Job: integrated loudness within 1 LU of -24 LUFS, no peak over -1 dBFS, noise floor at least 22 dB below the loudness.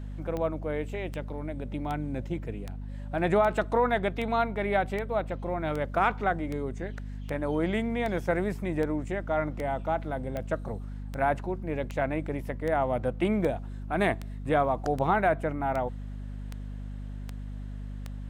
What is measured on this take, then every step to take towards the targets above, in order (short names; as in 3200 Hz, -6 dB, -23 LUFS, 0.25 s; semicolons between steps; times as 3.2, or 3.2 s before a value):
clicks 24; hum 50 Hz; harmonics up to 250 Hz; hum level -35 dBFS; loudness -29.5 LUFS; peak -12.0 dBFS; loudness target -24.0 LUFS
-> de-click; de-hum 50 Hz, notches 5; gain +5.5 dB